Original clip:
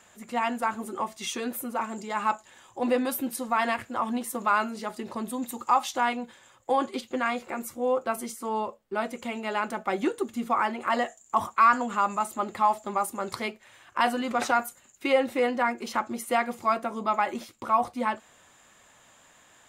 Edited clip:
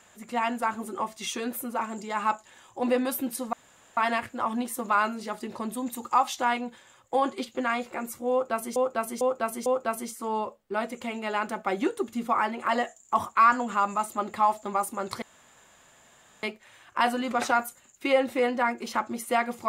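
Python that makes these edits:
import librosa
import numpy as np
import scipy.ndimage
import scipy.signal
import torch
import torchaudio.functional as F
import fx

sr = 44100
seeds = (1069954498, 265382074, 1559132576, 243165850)

y = fx.edit(x, sr, fx.insert_room_tone(at_s=3.53, length_s=0.44),
    fx.repeat(start_s=7.87, length_s=0.45, count=4),
    fx.insert_room_tone(at_s=13.43, length_s=1.21), tone=tone)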